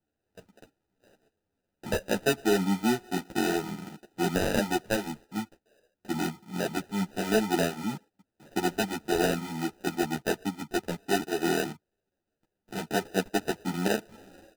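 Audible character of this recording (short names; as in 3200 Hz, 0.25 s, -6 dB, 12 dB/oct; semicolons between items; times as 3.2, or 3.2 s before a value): aliases and images of a low sample rate 1100 Hz, jitter 0%; a shimmering, thickened sound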